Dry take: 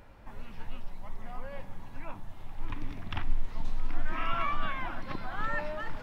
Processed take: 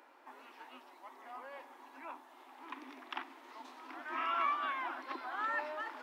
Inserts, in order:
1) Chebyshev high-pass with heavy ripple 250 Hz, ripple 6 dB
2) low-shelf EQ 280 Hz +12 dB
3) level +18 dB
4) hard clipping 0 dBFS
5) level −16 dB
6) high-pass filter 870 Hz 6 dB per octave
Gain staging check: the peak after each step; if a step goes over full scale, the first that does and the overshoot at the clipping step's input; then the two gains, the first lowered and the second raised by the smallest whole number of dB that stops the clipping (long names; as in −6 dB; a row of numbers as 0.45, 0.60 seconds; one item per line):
−24.5, −23.5, −5.5, −5.5, −21.5, −23.0 dBFS
no step passes full scale